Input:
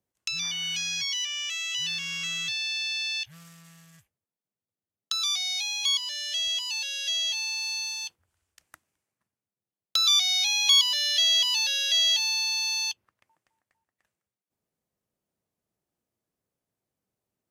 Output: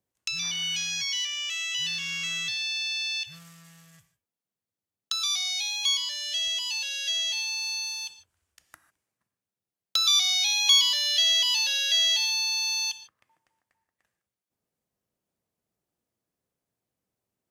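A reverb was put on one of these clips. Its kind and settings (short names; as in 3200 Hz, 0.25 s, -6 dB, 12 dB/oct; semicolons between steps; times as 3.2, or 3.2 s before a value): non-linear reverb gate 0.17 s flat, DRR 11 dB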